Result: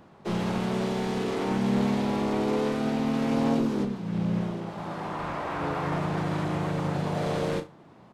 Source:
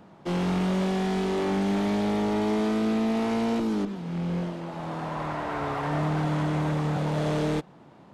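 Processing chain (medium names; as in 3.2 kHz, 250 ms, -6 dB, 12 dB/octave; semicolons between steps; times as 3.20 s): flutter echo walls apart 6 m, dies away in 0.23 s; harmony voices -7 st -9 dB, +3 st -3 dB; trim -3.5 dB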